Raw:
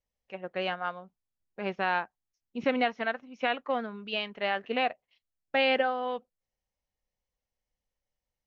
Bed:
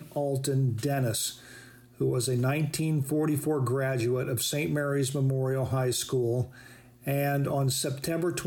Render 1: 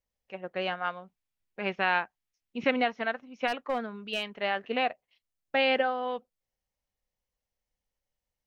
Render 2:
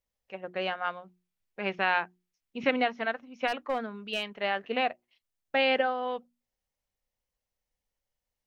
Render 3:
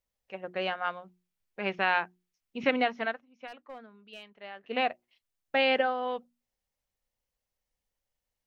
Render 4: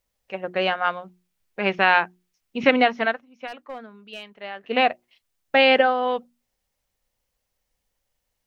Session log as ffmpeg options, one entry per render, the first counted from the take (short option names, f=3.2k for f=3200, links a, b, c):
-filter_complex "[0:a]asettb=1/sr,asplit=3[a][b][c];[a]atrim=end=0.754[d];[b]atrim=start=0.75:end=2.71,asetpts=PTS-STARTPTS,afade=t=in:d=0.004:c=qsin,afade=t=out:st=1.956:d=0.004:c=qsin,equalizer=f=2.4k:t=o:w=1.2:g=6[e];[c]atrim=start=2.706[f];[d][e]acrossfade=d=0.004:c1=hsin:c2=qsin[g];[g][f]acrossfade=d=0.004:c1=qsin:c2=hsin,asplit=3[h][i][j];[h]afade=t=out:st=3.47:d=0.02[k];[i]asoftclip=type=hard:threshold=-22.5dB,afade=t=in:st=3.47:d=0.02,afade=t=out:st=4.34:d=0.02[l];[j]afade=t=in:st=4.34:d=0.02[m];[k][l][m]amix=inputs=3:normalize=0"
-af "bandreject=f=60:t=h:w=6,bandreject=f=120:t=h:w=6,bandreject=f=180:t=h:w=6,bandreject=f=240:t=h:w=6,bandreject=f=300:t=h:w=6,bandreject=f=360:t=h:w=6"
-filter_complex "[0:a]asplit=3[a][b][c];[a]atrim=end=3.23,asetpts=PTS-STARTPTS,afade=t=out:st=3.06:d=0.17:silence=0.188365[d];[b]atrim=start=3.23:end=4.62,asetpts=PTS-STARTPTS,volume=-14.5dB[e];[c]atrim=start=4.62,asetpts=PTS-STARTPTS,afade=t=in:d=0.17:silence=0.188365[f];[d][e][f]concat=n=3:v=0:a=1"
-af "volume=9dB"